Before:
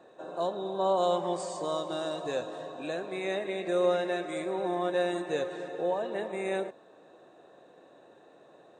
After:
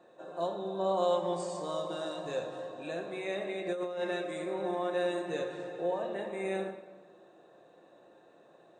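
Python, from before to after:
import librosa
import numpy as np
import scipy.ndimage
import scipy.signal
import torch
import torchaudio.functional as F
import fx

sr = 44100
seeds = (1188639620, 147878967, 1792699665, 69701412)

y = fx.room_shoebox(x, sr, seeds[0], volume_m3=500.0, walls='mixed', distance_m=0.87)
y = fx.over_compress(y, sr, threshold_db=-26.0, ratio=-0.5, at=(3.66, 4.19), fade=0.02)
y = y * 10.0 ** (-5.0 / 20.0)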